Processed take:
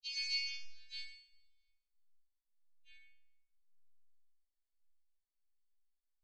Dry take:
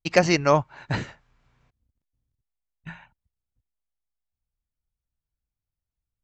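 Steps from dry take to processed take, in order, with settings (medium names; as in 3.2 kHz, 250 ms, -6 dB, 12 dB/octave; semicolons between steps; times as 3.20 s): partials quantised in pitch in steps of 2 st; inverse Chebyshev band-stop 110–1100 Hz, stop band 80 dB; chord resonator F#2 major, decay 0.73 s; gated-style reverb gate 90 ms falling, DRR 3 dB; in parallel at +1 dB: peak limiter -50 dBFS, peak gain reduction 12 dB; on the sum: low-pass 3.7 kHz 24 dB/octave; trim +17 dB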